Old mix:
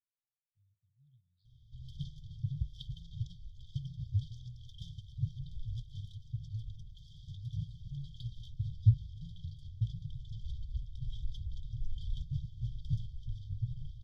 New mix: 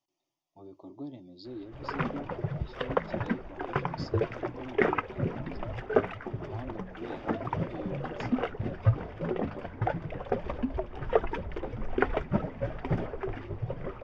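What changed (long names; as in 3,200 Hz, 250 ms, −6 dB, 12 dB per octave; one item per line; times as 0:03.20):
speech: remove transistor ladder low-pass 2,000 Hz, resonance 60%
master: remove linear-phase brick-wall band-stop 150–3,100 Hz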